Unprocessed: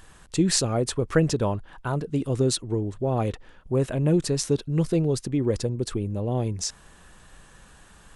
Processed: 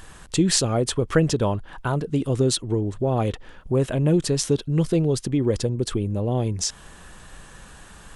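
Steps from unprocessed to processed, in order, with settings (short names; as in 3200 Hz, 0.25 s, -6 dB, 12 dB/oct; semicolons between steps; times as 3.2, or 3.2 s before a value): dynamic EQ 3200 Hz, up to +6 dB, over -58 dBFS, Q 6.1; in parallel at +1 dB: compressor, threshold -32 dBFS, peak gain reduction 16 dB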